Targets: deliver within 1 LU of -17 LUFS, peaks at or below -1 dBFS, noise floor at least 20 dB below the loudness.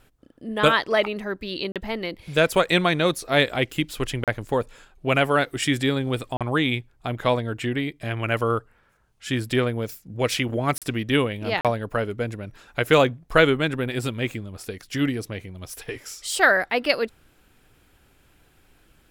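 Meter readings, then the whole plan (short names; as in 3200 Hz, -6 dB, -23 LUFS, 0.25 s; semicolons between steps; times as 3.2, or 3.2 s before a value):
dropouts 5; longest dropout 37 ms; loudness -23.5 LUFS; peak -2.5 dBFS; loudness target -17.0 LUFS
-> interpolate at 1.72/4.24/6.37/10.78/11.61, 37 ms; gain +6.5 dB; limiter -1 dBFS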